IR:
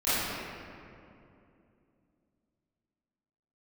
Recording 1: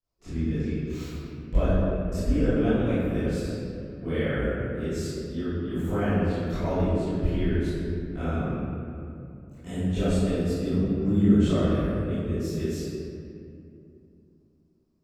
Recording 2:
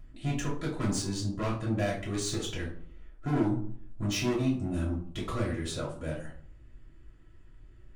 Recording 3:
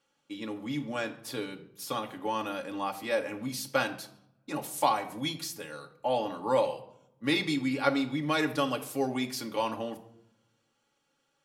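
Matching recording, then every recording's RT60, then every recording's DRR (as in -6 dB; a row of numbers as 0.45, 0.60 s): 1; 2.7, 0.55, 0.75 s; -17.5, -6.5, 2.0 dB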